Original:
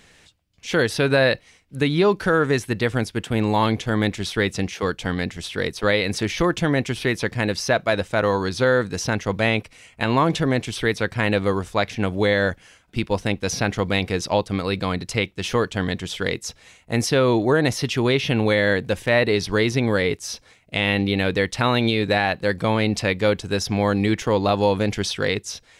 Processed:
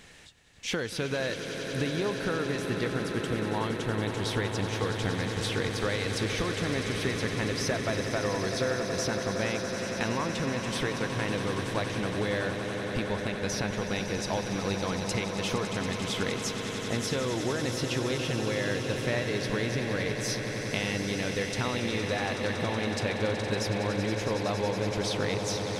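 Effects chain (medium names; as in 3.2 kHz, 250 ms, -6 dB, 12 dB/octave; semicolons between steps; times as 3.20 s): compression, threshold -29 dBFS, peak gain reduction 15.5 dB; echo with a slow build-up 93 ms, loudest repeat 8, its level -11.5 dB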